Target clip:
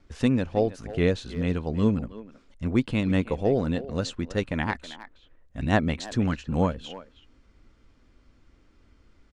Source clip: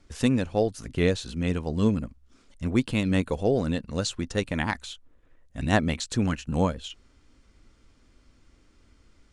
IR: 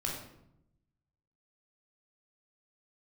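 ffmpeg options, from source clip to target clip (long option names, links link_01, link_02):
-filter_complex "[0:a]aemphasis=mode=reproduction:type=50fm,asplit=2[link_01][link_02];[link_02]adelay=320,highpass=300,lowpass=3400,asoftclip=type=hard:threshold=-15.5dB,volume=-14dB[link_03];[link_01][link_03]amix=inputs=2:normalize=0"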